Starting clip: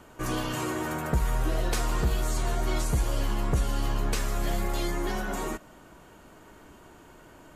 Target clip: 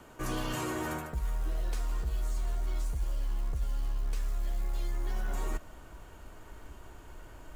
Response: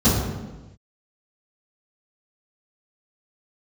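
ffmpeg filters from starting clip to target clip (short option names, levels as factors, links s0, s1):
-filter_complex "[0:a]asubboost=boost=6:cutoff=75,acrossover=split=220[s0][s1];[s1]acompressor=threshold=0.0398:ratio=6[s2];[s0][s2]amix=inputs=2:normalize=0,acrusher=bits=8:mode=log:mix=0:aa=0.000001,areverse,acompressor=threshold=0.0447:ratio=10,areverse,volume=0.841"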